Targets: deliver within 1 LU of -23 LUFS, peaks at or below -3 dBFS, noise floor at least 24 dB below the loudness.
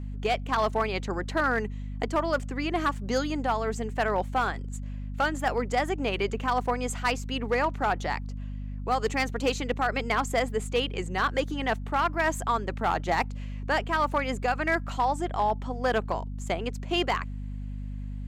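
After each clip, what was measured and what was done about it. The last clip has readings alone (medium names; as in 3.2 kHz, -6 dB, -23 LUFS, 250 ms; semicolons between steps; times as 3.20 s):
clipped samples 0.5%; clipping level -17.5 dBFS; hum 50 Hz; highest harmonic 250 Hz; hum level -32 dBFS; loudness -28.5 LUFS; peak level -17.5 dBFS; loudness target -23.0 LUFS
-> clip repair -17.5 dBFS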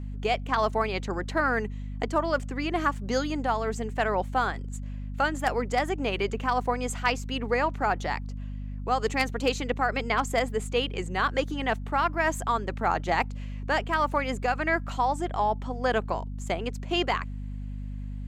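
clipped samples 0.0%; hum 50 Hz; highest harmonic 250 Hz; hum level -32 dBFS
-> de-hum 50 Hz, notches 5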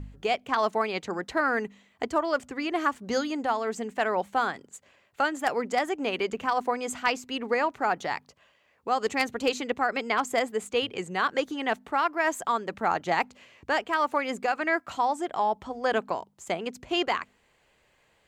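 hum not found; loudness -28.5 LUFS; peak level -9.0 dBFS; loudness target -23.0 LUFS
-> trim +5.5 dB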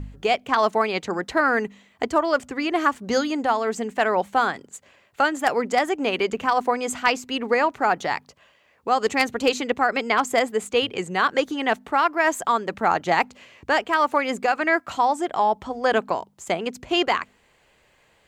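loudness -23.0 LUFS; peak level -3.5 dBFS; noise floor -61 dBFS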